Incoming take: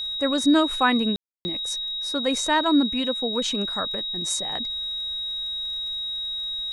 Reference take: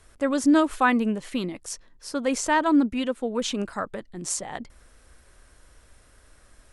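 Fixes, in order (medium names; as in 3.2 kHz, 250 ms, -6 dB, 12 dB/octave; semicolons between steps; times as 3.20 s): de-click; band-stop 3.8 kHz, Q 30; room tone fill 1.16–1.45 s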